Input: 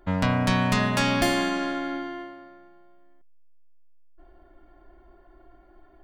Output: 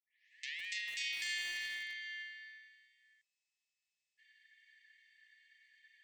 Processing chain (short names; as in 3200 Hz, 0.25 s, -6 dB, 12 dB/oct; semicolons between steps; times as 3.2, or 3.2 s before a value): tape start at the beginning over 0.66 s; compressor 2.5:1, threshold -42 dBFS, peak gain reduction 15.5 dB; limiter -31.5 dBFS, peak gain reduction 8.5 dB; brick-wall FIR band-pass 1700–8600 Hz; lo-fi delay 0.157 s, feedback 35%, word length 8-bit, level -11 dB; gain +8.5 dB